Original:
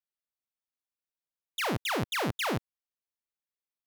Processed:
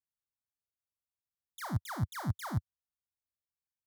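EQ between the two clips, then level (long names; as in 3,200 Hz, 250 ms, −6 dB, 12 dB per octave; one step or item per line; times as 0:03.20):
parametric band 92 Hz +11.5 dB 1.9 octaves
low-shelf EQ 130 Hz +5 dB
phaser with its sweep stopped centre 1,100 Hz, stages 4
−7.5 dB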